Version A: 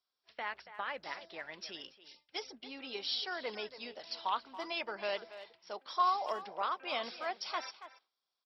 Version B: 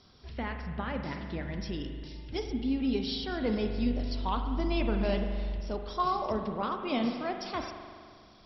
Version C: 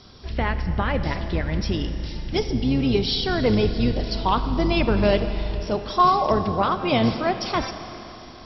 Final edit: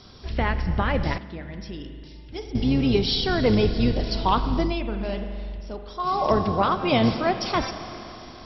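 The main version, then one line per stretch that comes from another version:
C
0:01.18–0:02.55: punch in from B
0:04.68–0:06.15: punch in from B, crossfade 0.24 s
not used: A

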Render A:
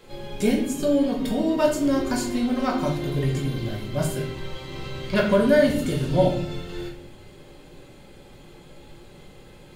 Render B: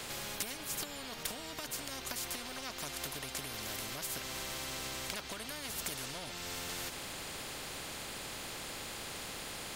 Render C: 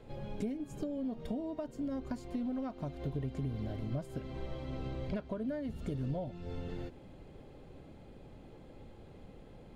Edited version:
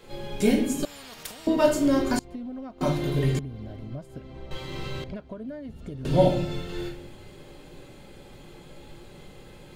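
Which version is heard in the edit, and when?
A
0:00.85–0:01.47: punch in from B
0:02.19–0:02.81: punch in from C
0:03.39–0:04.51: punch in from C
0:05.04–0:06.05: punch in from C

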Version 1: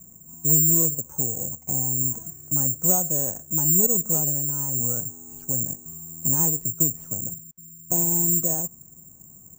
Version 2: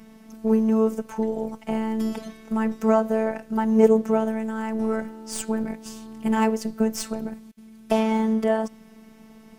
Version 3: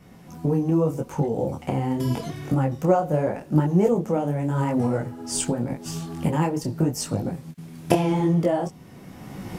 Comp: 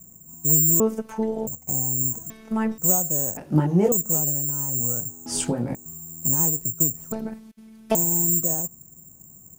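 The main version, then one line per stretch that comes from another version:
1
0:00.80–0:01.47: punch in from 2
0:02.30–0:02.78: punch in from 2
0:03.37–0:03.92: punch in from 3
0:05.26–0:05.75: punch in from 3
0:07.12–0:07.95: punch in from 2

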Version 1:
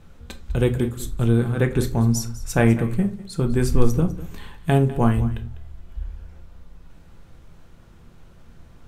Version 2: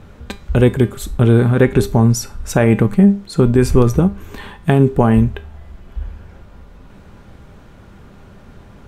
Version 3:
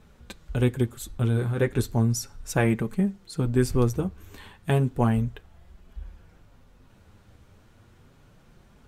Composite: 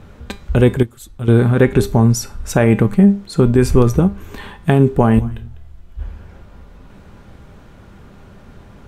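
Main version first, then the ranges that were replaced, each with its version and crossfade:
2
0:00.83–0:01.28: punch in from 3
0:05.19–0:05.99: punch in from 1

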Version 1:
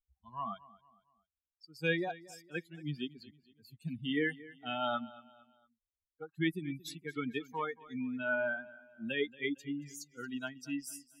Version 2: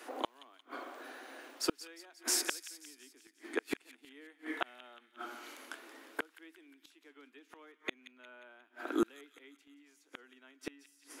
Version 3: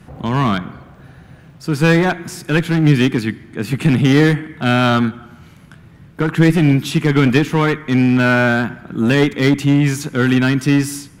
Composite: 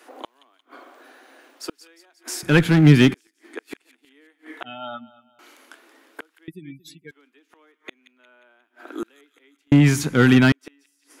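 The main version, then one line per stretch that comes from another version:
2
0:02.43–0:03.14: punch in from 3
0:04.64–0:05.39: punch in from 1
0:06.48–0:07.11: punch in from 1
0:09.72–0:10.52: punch in from 3

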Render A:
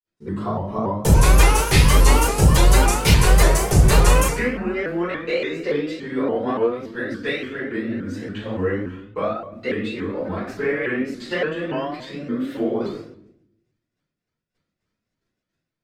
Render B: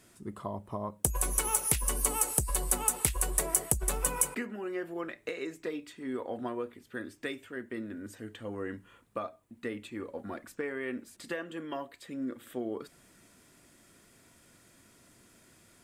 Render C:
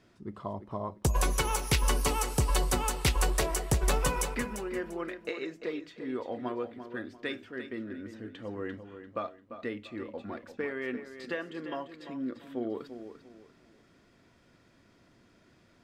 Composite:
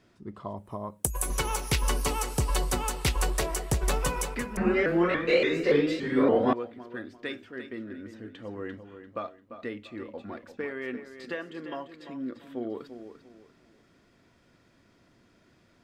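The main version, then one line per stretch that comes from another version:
C
0:00.57–0:01.30: punch in from B
0:04.57–0:06.53: punch in from A

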